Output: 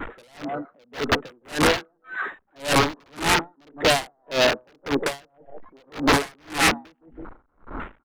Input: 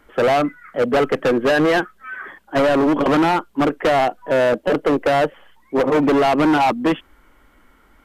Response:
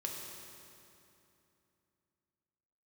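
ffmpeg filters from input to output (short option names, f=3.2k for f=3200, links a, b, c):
-filter_complex "[0:a]aeval=exprs='val(0)+0.5*0.0237*sgn(val(0))':c=same,acompressor=mode=upward:threshold=-20dB:ratio=2.5,lowpass=f=2.2k:w=0.5412,lowpass=f=2.2k:w=1.3066,agate=range=-6dB:threshold=-31dB:ratio=16:detection=peak,lowshelf=f=220:g=-2.5,asplit=2[a][b];[b]adelay=163,lowpass=f=1k:p=1,volume=-10dB,asplit=2[c][d];[d]adelay=163,lowpass=f=1k:p=1,volume=0.3,asplit=2[e][f];[f]adelay=163,lowpass=f=1k:p=1,volume=0.3[g];[a][c][e][g]amix=inputs=4:normalize=0,aeval=exprs='(mod(3.76*val(0)+1,2)-1)/3.76':c=same,adynamicequalizer=threshold=0.0251:dfrequency=590:dqfactor=7.8:tfrequency=590:tqfactor=7.8:attack=5:release=100:ratio=0.375:range=2:mode=cutabove:tftype=bell,afwtdn=0.0355,aeval=exprs='val(0)*pow(10,-39*(0.5-0.5*cos(2*PI*1.8*n/s))/20)':c=same"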